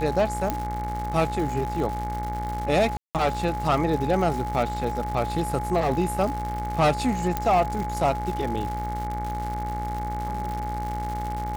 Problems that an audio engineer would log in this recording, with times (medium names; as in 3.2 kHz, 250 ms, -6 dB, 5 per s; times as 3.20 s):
buzz 60 Hz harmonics 38 -32 dBFS
crackle 240 per s -31 dBFS
whine 840 Hz -30 dBFS
0.50 s: pop -11 dBFS
2.97–3.15 s: dropout 178 ms
7.37 s: pop -11 dBFS